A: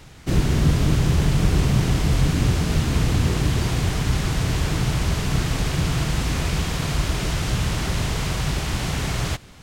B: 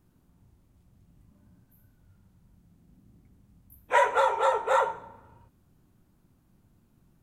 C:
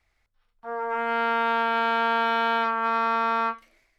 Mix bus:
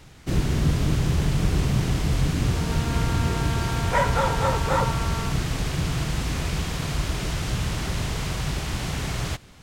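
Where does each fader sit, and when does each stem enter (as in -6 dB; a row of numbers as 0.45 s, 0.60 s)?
-3.5 dB, -1.0 dB, -10.5 dB; 0.00 s, 0.00 s, 1.80 s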